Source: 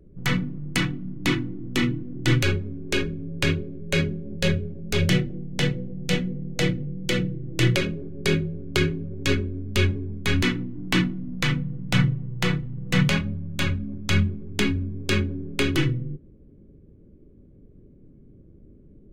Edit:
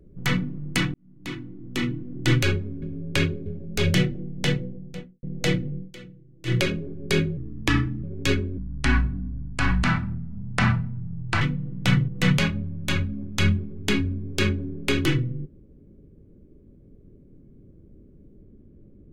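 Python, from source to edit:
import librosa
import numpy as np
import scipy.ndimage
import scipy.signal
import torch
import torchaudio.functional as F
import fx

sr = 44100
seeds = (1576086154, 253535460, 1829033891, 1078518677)

y = fx.studio_fade_out(x, sr, start_s=5.61, length_s=0.77)
y = fx.edit(y, sr, fx.fade_in_span(start_s=0.94, length_s=1.32),
    fx.cut(start_s=2.82, length_s=0.27),
    fx.cut(start_s=3.73, length_s=0.88),
    fx.fade_down_up(start_s=6.93, length_s=0.79, db=-19.0, fade_s=0.13),
    fx.speed_span(start_s=8.52, length_s=0.52, speed=0.78),
    fx.speed_span(start_s=9.58, length_s=1.9, speed=0.67),
    fx.cut(start_s=12.15, length_s=0.64), tone=tone)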